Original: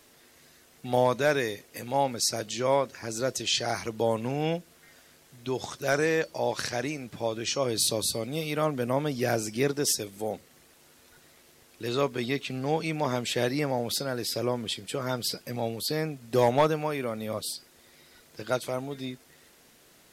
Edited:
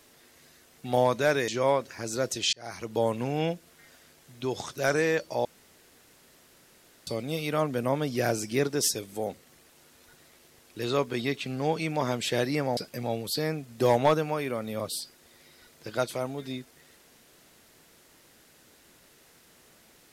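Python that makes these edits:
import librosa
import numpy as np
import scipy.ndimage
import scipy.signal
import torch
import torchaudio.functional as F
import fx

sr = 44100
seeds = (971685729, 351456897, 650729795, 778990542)

y = fx.edit(x, sr, fx.cut(start_s=1.48, length_s=1.04),
    fx.fade_in_span(start_s=3.57, length_s=0.45),
    fx.room_tone_fill(start_s=6.49, length_s=1.62),
    fx.cut(start_s=13.81, length_s=1.49), tone=tone)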